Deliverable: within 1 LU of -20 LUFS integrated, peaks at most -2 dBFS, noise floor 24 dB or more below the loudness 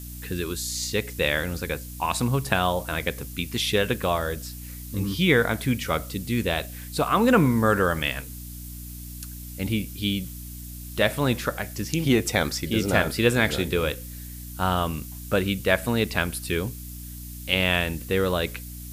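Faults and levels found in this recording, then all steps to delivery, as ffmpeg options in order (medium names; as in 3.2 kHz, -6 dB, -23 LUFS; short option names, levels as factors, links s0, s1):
hum 60 Hz; highest harmonic 300 Hz; hum level -37 dBFS; noise floor -38 dBFS; noise floor target -49 dBFS; loudness -25.0 LUFS; peak level -3.5 dBFS; loudness target -20.0 LUFS
-> -af "bandreject=f=60:t=h:w=4,bandreject=f=120:t=h:w=4,bandreject=f=180:t=h:w=4,bandreject=f=240:t=h:w=4,bandreject=f=300:t=h:w=4"
-af "afftdn=nr=11:nf=-38"
-af "volume=1.78,alimiter=limit=0.794:level=0:latency=1"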